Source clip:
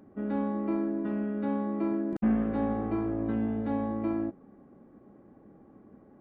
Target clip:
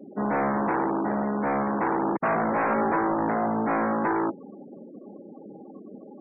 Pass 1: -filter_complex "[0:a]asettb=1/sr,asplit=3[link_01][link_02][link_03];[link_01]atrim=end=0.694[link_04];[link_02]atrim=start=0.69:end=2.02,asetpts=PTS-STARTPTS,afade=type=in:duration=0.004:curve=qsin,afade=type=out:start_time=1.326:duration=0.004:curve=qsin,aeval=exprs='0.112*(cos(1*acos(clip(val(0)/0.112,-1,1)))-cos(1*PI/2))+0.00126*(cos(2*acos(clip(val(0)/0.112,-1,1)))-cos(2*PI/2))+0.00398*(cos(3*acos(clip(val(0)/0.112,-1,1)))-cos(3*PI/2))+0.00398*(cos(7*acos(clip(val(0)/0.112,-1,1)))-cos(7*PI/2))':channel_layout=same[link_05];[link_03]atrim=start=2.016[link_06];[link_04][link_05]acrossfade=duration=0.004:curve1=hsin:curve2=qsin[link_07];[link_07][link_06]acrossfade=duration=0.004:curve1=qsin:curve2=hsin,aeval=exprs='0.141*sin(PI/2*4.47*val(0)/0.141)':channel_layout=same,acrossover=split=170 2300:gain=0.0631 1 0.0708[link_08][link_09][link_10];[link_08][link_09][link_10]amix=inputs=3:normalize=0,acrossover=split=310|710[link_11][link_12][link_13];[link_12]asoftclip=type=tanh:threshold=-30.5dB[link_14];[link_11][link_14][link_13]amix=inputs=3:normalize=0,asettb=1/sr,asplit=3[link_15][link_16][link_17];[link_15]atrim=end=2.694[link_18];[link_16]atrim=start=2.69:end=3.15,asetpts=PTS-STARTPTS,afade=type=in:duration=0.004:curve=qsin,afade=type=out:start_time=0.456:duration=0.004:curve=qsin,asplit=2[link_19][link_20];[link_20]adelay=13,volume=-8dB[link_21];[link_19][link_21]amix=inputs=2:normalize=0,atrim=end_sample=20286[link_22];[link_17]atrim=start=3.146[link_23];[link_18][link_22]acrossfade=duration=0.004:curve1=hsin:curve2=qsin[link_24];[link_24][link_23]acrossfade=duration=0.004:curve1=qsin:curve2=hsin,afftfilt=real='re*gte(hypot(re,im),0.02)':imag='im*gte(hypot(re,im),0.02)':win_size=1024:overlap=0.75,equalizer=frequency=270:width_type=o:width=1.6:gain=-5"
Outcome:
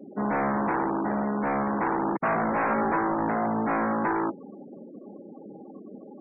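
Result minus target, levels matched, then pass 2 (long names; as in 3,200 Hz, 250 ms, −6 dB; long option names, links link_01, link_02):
soft clipping: distortion +8 dB
-filter_complex "[0:a]asettb=1/sr,asplit=3[link_01][link_02][link_03];[link_01]atrim=end=0.694[link_04];[link_02]atrim=start=0.69:end=2.02,asetpts=PTS-STARTPTS,afade=type=in:duration=0.004:curve=qsin,afade=type=out:start_time=1.326:duration=0.004:curve=qsin,aeval=exprs='0.112*(cos(1*acos(clip(val(0)/0.112,-1,1)))-cos(1*PI/2))+0.00126*(cos(2*acos(clip(val(0)/0.112,-1,1)))-cos(2*PI/2))+0.00398*(cos(3*acos(clip(val(0)/0.112,-1,1)))-cos(3*PI/2))+0.00398*(cos(7*acos(clip(val(0)/0.112,-1,1)))-cos(7*PI/2))':channel_layout=same[link_05];[link_03]atrim=start=2.016[link_06];[link_04][link_05]acrossfade=duration=0.004:curve1=hsin:curve2=qsin[link_07];[link_07][link_06]acrossfade=duration=0.004:curve1=qsin:curve2=hsin,aeval=exprs='0.141*sin(PI/2*4.47*val(0)/0.141)':channel_layout=same,acrossover=split=170 2300:gain=0.0631 1 0.0708[link_08][link_09][link_10];[link_08][link_09][link_10]amix=inputs=3:normalize=0,acrossover=split=310|710[link_11][link_12][link_13];[link_12]asoftclip=type=tanh:threshold=-23dB[link_14];[link_11][link_14][link_13]amix=inputs=3:normalize=0,asettb=1/sr,asplit=3[link_15][link_16][link_17];[link_15]atrim=end=2.694[link_18];[link_16]atrim=start=2.69:end=3.15,asetpts=PTS-STARTPTS,afade=type=in:duration=0.004:curve=qsin,afade=type=out:start_time=0.456:duration=0.004:curve=qsin,asplit=2[link_19][link_20];[link_20]adelay=13,volume=-8dB[link_21];[link_19][link_21]amix=inputs=2:normalize=0,atrim=end_sample=20286[link_22];[link_17]atrim=start=3.146[link_23];[link_18][link_22]acrossfade=duration=0.004:curve1=hsin:curve2=qsin[link_24];[link_24][link_23]acrossfade=duration=0.004:curve1=qsin:curve2=hsin,afftfilt=real='re*gte(hypot(re,im),0.02)':imag='im*gte(hypot(re,im),0.02)':win_size=1024:overlap=0.75,equalizer=frequency=270:width_type=o:width=1.6:gain=-5"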